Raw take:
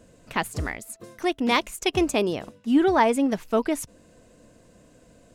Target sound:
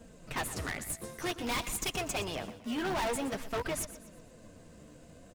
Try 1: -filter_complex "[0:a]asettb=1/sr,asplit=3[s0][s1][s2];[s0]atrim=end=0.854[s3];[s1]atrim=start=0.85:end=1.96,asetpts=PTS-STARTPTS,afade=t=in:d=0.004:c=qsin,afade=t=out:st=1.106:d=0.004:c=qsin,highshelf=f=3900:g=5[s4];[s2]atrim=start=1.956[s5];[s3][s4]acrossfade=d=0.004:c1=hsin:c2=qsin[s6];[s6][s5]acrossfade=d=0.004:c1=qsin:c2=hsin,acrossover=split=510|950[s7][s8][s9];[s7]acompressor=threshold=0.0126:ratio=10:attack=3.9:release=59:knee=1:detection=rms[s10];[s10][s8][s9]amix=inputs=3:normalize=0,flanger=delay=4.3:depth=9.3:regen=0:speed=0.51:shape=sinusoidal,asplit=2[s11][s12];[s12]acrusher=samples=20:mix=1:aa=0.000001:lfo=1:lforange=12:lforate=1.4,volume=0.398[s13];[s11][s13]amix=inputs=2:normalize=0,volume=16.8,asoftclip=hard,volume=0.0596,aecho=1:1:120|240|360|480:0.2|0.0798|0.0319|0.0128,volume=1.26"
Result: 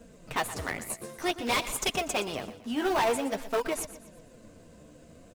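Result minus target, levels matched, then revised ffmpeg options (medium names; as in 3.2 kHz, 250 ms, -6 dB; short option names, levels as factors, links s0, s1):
decimation with a swept rate: distortion -29 dB; overload inside the chain: distortion -5 dB
-filter_complex "[0:a]asettb=1/sr,asplit=3[s0][s1][s2];[s0]atrim=end=0.854[s3];[s1]atrim=start=0.85:end=1.96,asetpts=PTS-STARTPTS,afade=t=in:d=0.004:c=qsin,afade=t=out:st=1.106:d=0.004:c=qsin,highshelf=f=3900:g=5[s4];[s2]atrim=start=1.956[s5];[s3][s4]acrossfade=d=0.004:c1=hsin:c2=qsin[s6];[s6][s5]acrossfade=d=0.004:c1=qsin:c2=hsin,acrossover=split=510|950[s7][s8][s9];[s7]acompressor=threshold=0.0126:ratio=10:attack=3.9:release=59:knee=1:detection=rms[s10];[s10][s8][s9]amix=inputs=3:normalize=0,flanger=delay=4.3:depth=9.3:regen=0:speed=0.51:shape=sinusoidal,asplit=2[s11][s12];[s12]acrusher=samples=74:mix=1:aa=0.000001:lfo=1:lforange=44.4:lforate=1.4,volume=0.398[s13];[s11][s13]amix=inputs=2:normalize=0,volume=42.2,asoftclip=hard,volume=0.0237,aecho=1:1:120|240|360|480:0.2|0.0798|0.0319|0.0128,volume=1.26"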